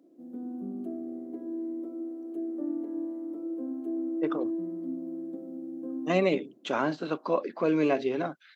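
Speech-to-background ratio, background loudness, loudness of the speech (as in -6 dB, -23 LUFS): 6.5 dB, -35.5 LUFS, -29.0 LUFS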